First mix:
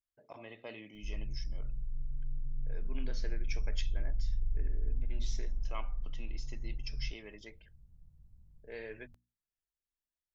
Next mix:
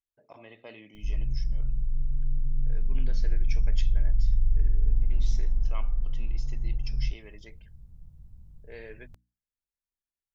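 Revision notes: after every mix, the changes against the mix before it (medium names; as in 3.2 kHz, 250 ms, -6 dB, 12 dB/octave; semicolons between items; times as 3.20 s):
background +10.0 dB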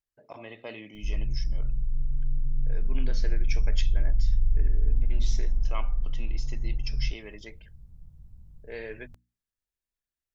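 speech +6.0 dB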